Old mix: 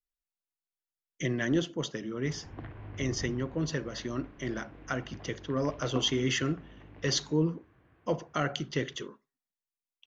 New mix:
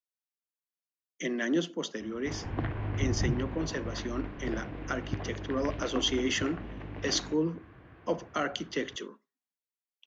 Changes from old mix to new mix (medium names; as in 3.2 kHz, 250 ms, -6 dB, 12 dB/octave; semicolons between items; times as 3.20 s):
speech: add steep high-pass 170 Hz 72 dB/octave; background +10.5 dB